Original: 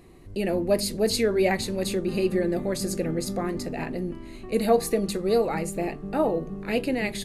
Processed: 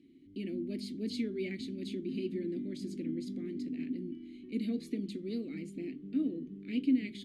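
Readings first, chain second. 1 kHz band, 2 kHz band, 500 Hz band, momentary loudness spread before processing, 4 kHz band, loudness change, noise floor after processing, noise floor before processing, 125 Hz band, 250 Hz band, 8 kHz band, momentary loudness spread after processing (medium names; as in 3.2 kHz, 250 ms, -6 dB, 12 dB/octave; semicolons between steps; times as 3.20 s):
under -35 dB, -16.5 dB, -18.0 dB, 9 LU, -14.5 dB, -11.0 dB, -55 dBFS, -41 dBFS, -12.5 dB, -6.0 dB, under -20 dB, 7 LU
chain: vowel filter i; high-order bell 1.1 kHz -10 dB 2.6 oct; trim +3.5 dB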